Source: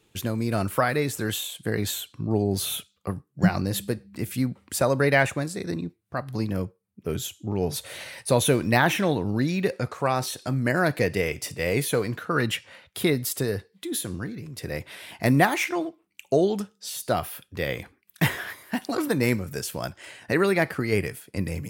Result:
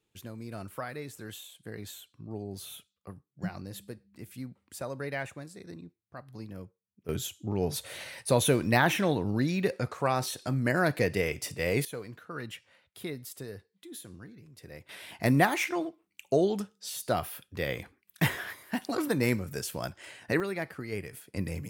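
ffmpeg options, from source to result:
ffmpeg -i in.wav -af "asetnsamples=nb_out_samples=441:pad=0,asendcmd='7.09 volume volume -3.5dB;11.85 volume volume -15dB;14.89 volume volume -4dB;20.4 volume volume -12dB;21.13 volume volume -5dB',volume=-15dB" out.wav

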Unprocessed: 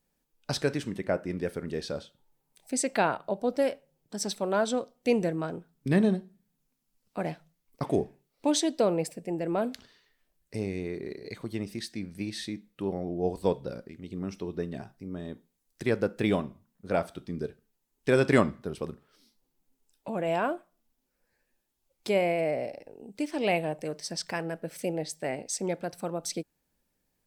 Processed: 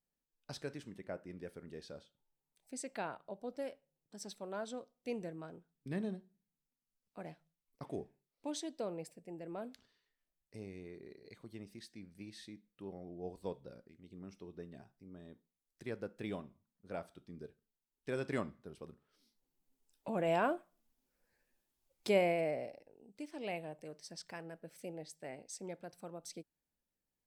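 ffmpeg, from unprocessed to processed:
ffmpeg -i in.wav -af "volume=-4dB,afade=type=in:start_time=18.87:duration=1.34:silence=0.266073,afade=type=out:start_time=22.14:duration=0.73:silence=0.298538" out.wav

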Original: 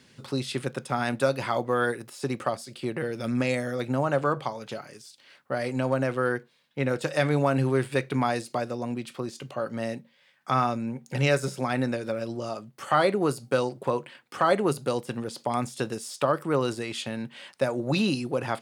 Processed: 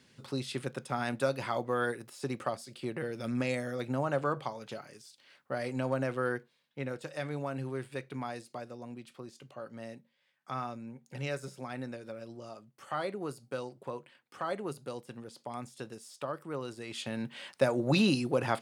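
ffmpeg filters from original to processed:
ffmpeg -i in.wav -af "volume=6dB,afade=type=out:start_time=6.37:duration=0.66:silence=0.446684,afade=type=in:start_time=16.75:duration=0.58:silence=0.251189" out.wav

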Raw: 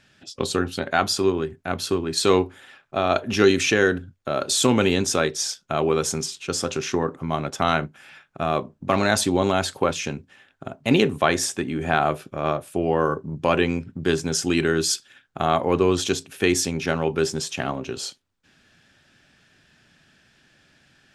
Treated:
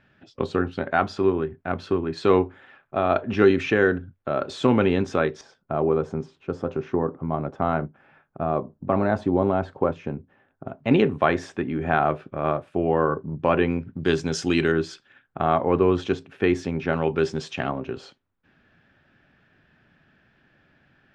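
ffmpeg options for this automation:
ffmpeg -i in.wav -af "asetnsamples=nb_out_samples=441:pad=0,asendcmd='5.41 lowpass f 1000;10.68 lowpass f 2000;13.97 lowpass f 4400;14.72 lowpass f 1900;16.93 lowpass f 3100;17.69 lowpass f 1900',lowpass=1900" out.wav

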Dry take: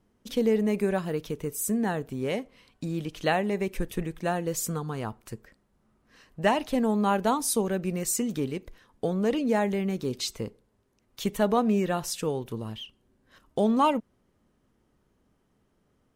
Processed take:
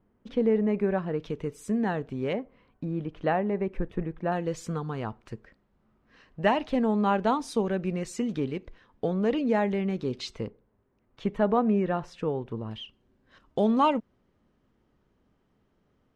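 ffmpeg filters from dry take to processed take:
ffmpeg -i in.wav -af "asetnsamples=nb_out_samples=441:pad=0,asendcmd='1.2 lowpass f 3400;2.33 lowpass f 1500;4.32 lowpass f 3500;10.47 lowpass f 1900;12.71 lowpass f 4500',lowpass=1900" out.wav

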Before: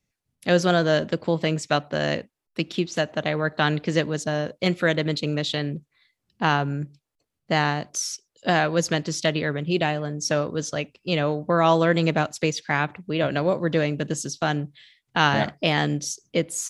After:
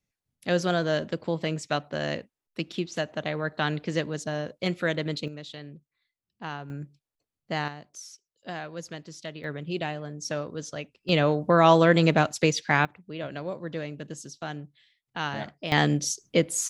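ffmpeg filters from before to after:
ffmpeg -i in.wav -af "asetnsamples=nb_out_samples=441:pad=0,asendcmd='5.28 volume volume -15dB;6.7 volume volume -8dB;7.68 volume volume -15.5dB;9.44 volume volume -8dB;11.09 volume volume 1dB;12.85 volume volume -11.5dB;15.72 volume volume 1dB',volume=-5.5dB" out.wav

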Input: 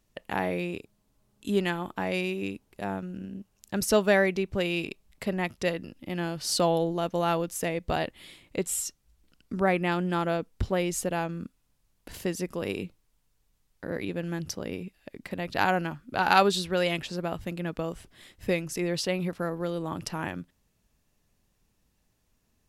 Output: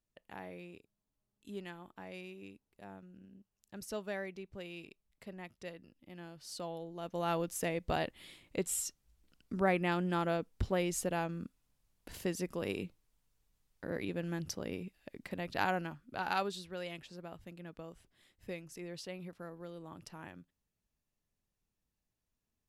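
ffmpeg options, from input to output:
ffmpeg -i in.wav -af "volume=-5.5dB,afade=type=in:start_time=6.91:duration=0.53:silence=0.237137,afade=type=out:start_time=15.18:duration=1.4:silence=0.298538" out.wav

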